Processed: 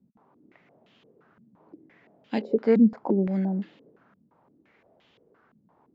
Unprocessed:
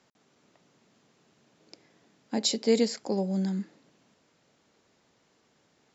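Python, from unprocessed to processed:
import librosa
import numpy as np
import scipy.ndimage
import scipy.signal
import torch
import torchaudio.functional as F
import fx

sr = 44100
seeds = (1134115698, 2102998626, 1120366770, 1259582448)

y = fx.filter_held_lowpass(x, sr, hz=5.8, low_hz=210.0, high_hz=3100.0)
y = y * 10.0 ** (2.0 / 20.0)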